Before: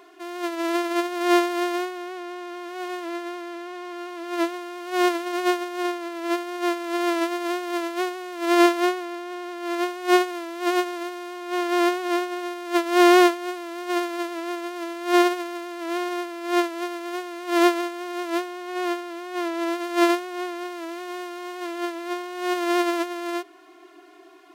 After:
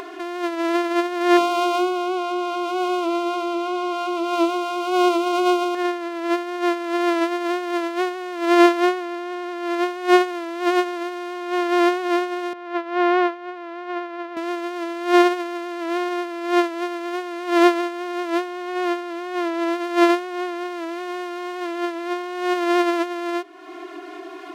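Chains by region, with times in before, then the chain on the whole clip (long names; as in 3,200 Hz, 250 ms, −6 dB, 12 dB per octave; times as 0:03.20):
0:01.37–0:05.75: Butterworth band-reject 1,800 Hz, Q 2.1 + mains-hum notches 50/100/150/200/250/300/350/400/450/500 Hz + envelope flattener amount 50%
0:12.53–0:14.37: high-pass filter 700 Hz 6 dB per octave + head-to-tape spacing loss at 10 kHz 32 dB
whole clip: low-pass filter 3,800 Hz 6 dB per octave; upward compression, threshold −28 dBFS; level +3.5 dB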